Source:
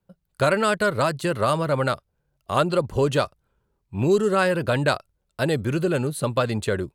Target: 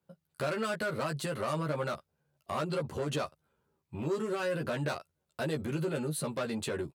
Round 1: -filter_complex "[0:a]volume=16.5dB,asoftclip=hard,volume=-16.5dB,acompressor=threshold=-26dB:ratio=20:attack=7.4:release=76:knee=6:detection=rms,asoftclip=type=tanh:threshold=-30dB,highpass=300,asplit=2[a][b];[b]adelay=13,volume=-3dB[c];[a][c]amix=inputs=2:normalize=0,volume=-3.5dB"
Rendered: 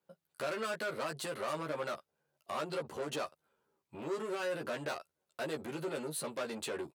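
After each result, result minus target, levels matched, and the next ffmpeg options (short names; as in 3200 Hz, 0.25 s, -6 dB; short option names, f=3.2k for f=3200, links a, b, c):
125 Hz band -9.0 dB; soft clip: distortion +9 dB
-filter_complex "[0:a]volume=16.5dB,asoftclip=hard,volume=-16.5dB,acompressor=threshold=-26dB:ratio=20:attack=7.4:release=76:knee=6:detection=rms,asoftclip=type=tanh:threshold=-30dB,highpass=120,asplit=2[a][b];[b]adelay=13,volume=-3dB[c];[a][c]amix=inputs=2:normalize=0,volume=-3.5dB"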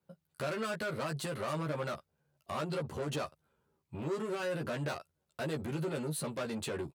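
soft clip: distortion +9 dB
-filter_complex "[0:a]volume=16.5dB,asoftclip=hard,volume=-16.5dB,acompressor=threshold=-26dB:ratio=20:attack=7.4:release=76:knee=6:detection=rms,asoftclip=type=tanh:threshold=-23dB,highpass=120,asplit=2[a][b];[b]adelay=13,volume=-3dB[c];[a][c]amix=inputs=2:normalize=0,volume=-3.5dB"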